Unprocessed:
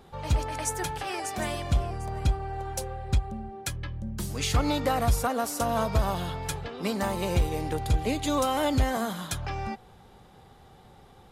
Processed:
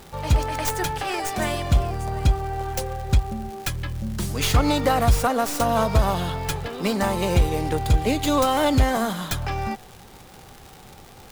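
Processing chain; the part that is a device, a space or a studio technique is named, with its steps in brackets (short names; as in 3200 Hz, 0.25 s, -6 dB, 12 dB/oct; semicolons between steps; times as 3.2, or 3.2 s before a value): record under a worn stylus (tracing distortion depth 0.11 ms; crackle 150/s -38 dBFS; pink noise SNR 29 dB); gain +6 dB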